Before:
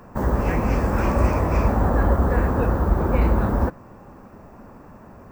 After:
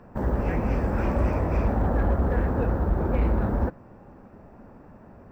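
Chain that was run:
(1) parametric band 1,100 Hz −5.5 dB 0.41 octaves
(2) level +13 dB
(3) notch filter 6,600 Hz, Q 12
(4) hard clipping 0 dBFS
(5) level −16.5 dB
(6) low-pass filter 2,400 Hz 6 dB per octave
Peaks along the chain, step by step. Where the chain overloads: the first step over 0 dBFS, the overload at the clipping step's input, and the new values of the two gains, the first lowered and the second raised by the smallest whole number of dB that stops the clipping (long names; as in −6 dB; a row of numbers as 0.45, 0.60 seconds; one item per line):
−6.5, +6.5, +6.5, 0.0, −16.5, −16.5 dBFS
step 2, 6.5 dB
step 2 +6 dB, step 5 −9.5 dB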